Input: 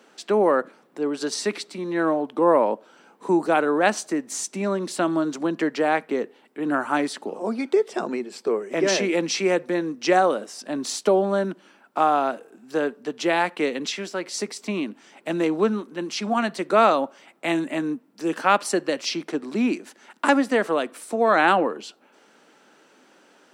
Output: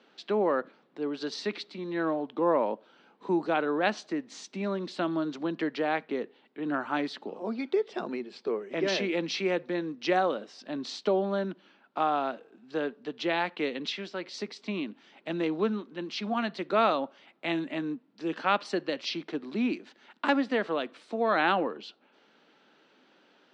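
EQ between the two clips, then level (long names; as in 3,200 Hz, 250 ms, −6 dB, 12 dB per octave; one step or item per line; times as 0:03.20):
transistor ladder low-pass 4,700 Hz, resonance 40%
low-shelf EQ 180 Hz +6 dB
0.0 dB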